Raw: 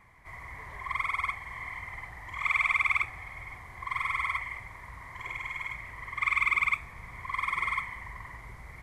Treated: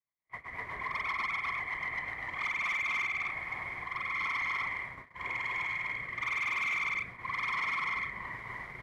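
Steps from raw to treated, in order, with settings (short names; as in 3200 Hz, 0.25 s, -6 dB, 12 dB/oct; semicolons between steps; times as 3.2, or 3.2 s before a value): high shelf 6800 Hz +11 dB; in parallel at -1 dB: compressor, threshold -37 dBFS, peak gain reduction 15 dB; on the sum: rotary speaker horn 8 Hz, later 1 Hz, at 1.97; loudspeakers at several distances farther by 86 m -2 dB, 98 m -9 dB; gate -39 dBFS, range -43 dB; hard clip -29 dBFS, distortion -6 dB; three-band isolator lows -16 dB, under 150 Hz, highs -22 dB, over 4000 Hz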